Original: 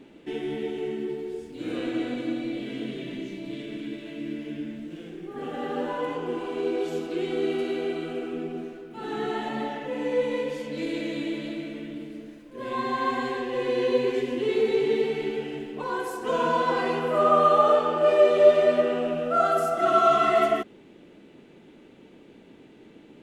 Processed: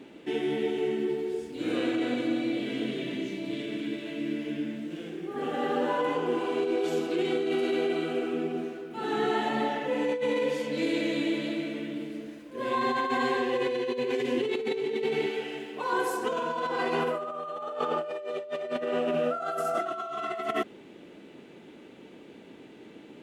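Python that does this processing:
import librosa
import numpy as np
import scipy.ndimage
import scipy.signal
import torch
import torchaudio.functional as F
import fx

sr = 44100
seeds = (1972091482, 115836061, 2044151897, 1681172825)

y = fx.low_shelf(x, sr, hz=370.0, db=-11.5, at=(15.26, 15.93))
y = scipy.signal.sosfilt(scipy.signal.butter(2, 44.0, 'highpass', fs=sr, output='sos'), y)
y = fx.low_shelf(y, sr, hz=160.0, db=-7.5)
y = fx.over_compress(y, sr, threshold_db=-29.0, ratio=-1.0)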